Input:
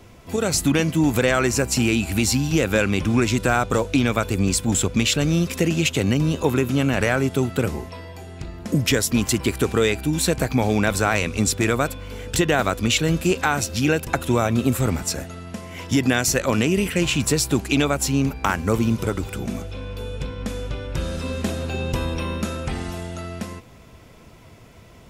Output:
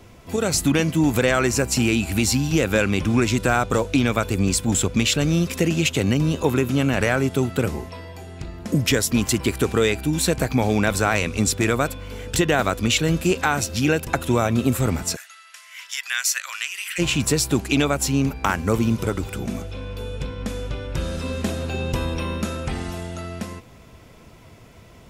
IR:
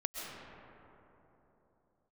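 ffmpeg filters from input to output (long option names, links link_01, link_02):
-filter_complex "[0:a]asplit=3[link_01][link_02][link_03];[link_01]afade=type=out:start_time=15.15:duration=0.02[link_04];[link_02]highpass=frequency=1400:width=0.5412,highpass=frequency=1400:width=1.3066,afade=type=in:start_time=15.15:duration=0.02,afade=type=out:start_time=16.98:duration=0.02[link_05];[link_03]afade=type=in:start_time=16.98:duration=0.02[link_06];[link_04][link_05][link_06]amix=inputs=3:normalize=0"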